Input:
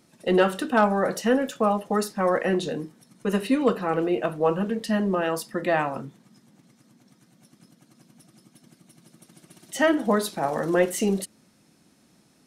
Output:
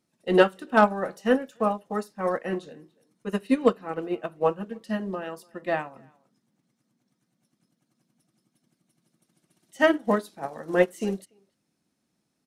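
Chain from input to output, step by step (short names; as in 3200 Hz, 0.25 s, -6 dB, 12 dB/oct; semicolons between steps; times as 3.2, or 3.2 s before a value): speakerphone echo 0.29 s, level -19 dB; upward expander 2.5:1, over -29 dBFS; gain +4 dB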